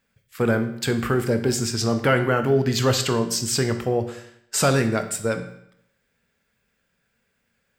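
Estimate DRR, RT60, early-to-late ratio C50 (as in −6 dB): 7.5 dB, 0.75 s, 11.0 dB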